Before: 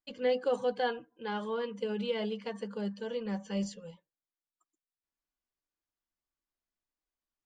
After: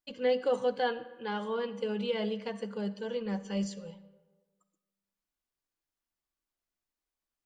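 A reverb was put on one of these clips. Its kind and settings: digital reverb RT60 1.4 s, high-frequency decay 0.55×, pre-delay 15 ms, DRR 14.5 dB; gain +1 dB

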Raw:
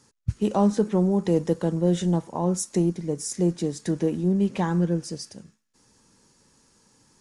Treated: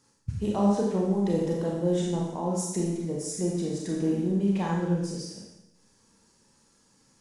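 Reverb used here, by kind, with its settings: Schroeder reverb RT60 0.91 s, combs from 28 ms, DRR -2.5 dB; gain -7 dB

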